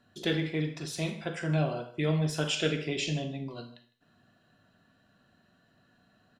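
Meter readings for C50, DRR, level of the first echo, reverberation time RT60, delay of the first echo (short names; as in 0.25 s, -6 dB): 9.5 dB, 8.0 dB, -21.0 dB, 0.50 s, 0.156 s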